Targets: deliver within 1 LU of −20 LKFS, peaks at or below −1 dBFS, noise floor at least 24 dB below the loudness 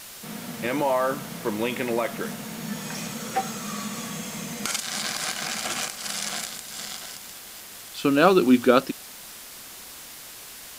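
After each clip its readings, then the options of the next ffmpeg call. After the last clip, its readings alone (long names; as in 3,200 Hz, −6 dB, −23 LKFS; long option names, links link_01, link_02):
background noise floor −42 dBFS; target noise floor −50 dBFS; integrated loudness −26.0 LKFS; sample peak −3.0 dBFS; target loudness −20.0 LKFS
→ -af "afftdn=noise_reduction=8:noise_floor=-42"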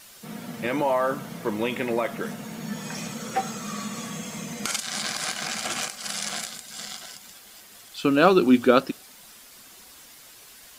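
background noise floor −49 dBFS; target noise floor −50 dBFS
→ -af "afftdn=noise_reduction=6:noise_floor=-49"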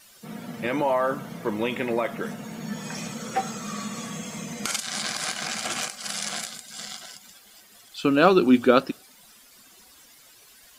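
background noise floor −53 dBFS; integrated loudness −26.0 LKFS; sample peak −3.5 dBFS; target loudness −20.0 LKFS
→ -af "volume=6dB,alimiter=limit=-1dB:level=0:latency=1"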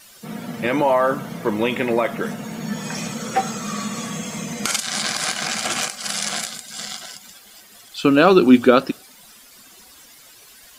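integrated loudness −20.5 LKFS; sample peak −1.0 dBFS; background noise floor −47 dBFS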